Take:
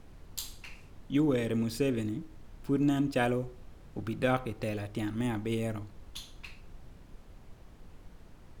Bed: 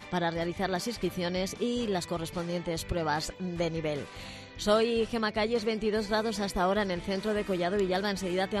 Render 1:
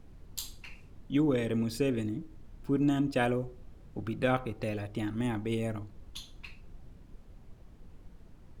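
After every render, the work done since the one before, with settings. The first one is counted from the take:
broadband denoise 6 dB, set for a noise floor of −54 dBFS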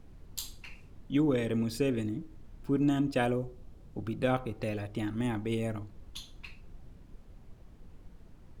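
0:03.21–0:04.53: parametric band 1,800 Hz −4 dB 1.3 octaves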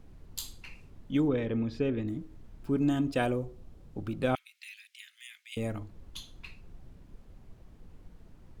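0:01.28–0:02.08: high-frequency loss of the air 220 metres
0:04.35–0:05.57: Butterworth high-pass 2,100 Hz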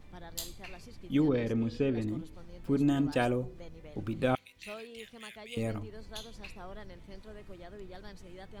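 mix in bed −20 dB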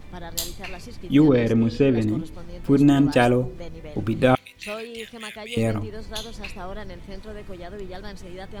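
level +11 dB

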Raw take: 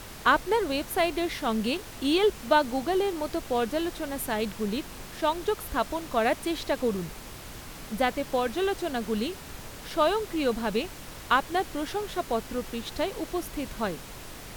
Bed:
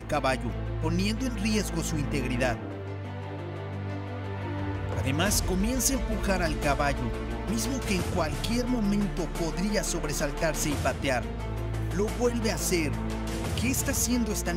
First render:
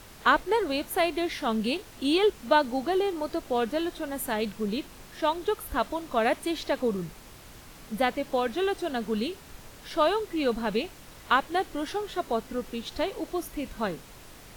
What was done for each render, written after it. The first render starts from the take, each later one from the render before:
noise reduction from a noise print 6 dB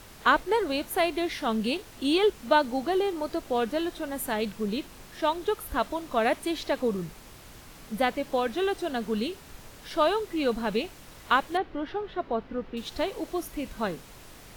0:11.57–0:12.77: high-frequency loss of the air 320 metres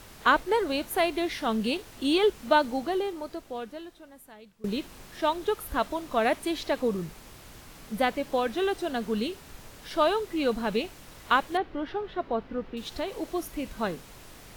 0:02.66–0:04.64: fade out quadratic, to −22.5 dB
0:12.71–0:13.20: downward compressor 1.5 to 1, threshold −32 dBFS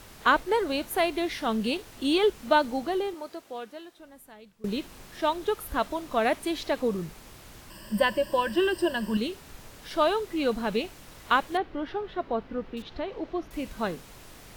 0:03.14–0:03.99: high-pass filter 360 Hz 6 dB per octave
0:07.70–0:09.17: EQ curve with evenly spaced ripples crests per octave 1.3, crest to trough 16 dB
0:12.82–0:13.51: high-frequency loss of the air 250 metres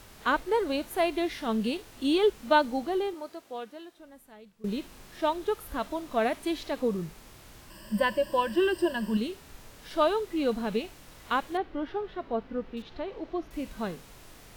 harmonic and percussive parts rebalanced percussive −7 dB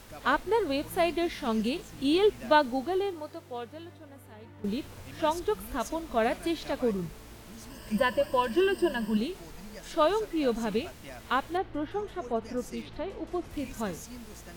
mix in bed −18.5 dB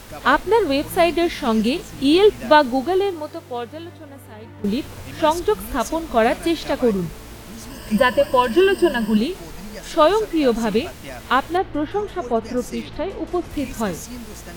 level +10 dB
brickwall limiter −1 dBFS, peak gain reduction 1.5 dB

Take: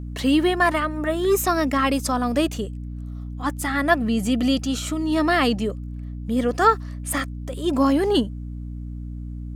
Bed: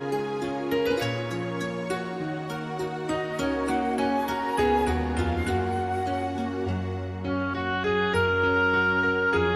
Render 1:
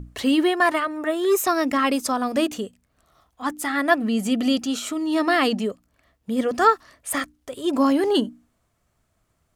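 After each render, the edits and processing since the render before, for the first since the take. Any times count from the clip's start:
mains-hum notches 60/120/180/240/300 Hz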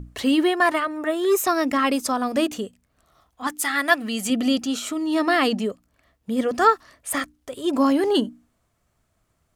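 0:03.47–0:04.30: tilt shelving filter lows −6.5 dB, about 1,100 Hz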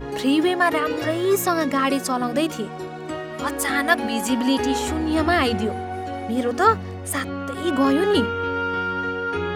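mix in bed −2 dB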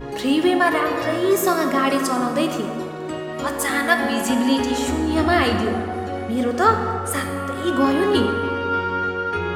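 dense smooth reverb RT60 2.3 s, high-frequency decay 0.5×, DRR 4 dB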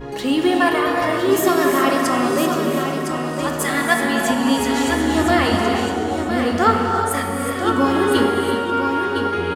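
single-tap delay 1,009 ms −7 dB
reverb whose tail is shaped and stops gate 400 ms rising, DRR 3.5 dB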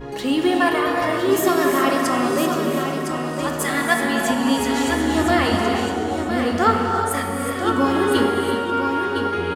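level −1.5 dB

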